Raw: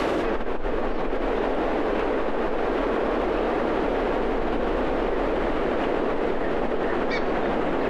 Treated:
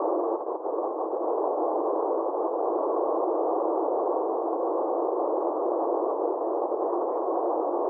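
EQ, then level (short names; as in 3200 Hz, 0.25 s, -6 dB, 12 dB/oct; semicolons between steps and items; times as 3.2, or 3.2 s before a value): Chebyshev band-pass 330–1100 Hz, order 4; air absorption 200 m; bell 420 Hz -4 dB 0.39 oct; +2.0 dB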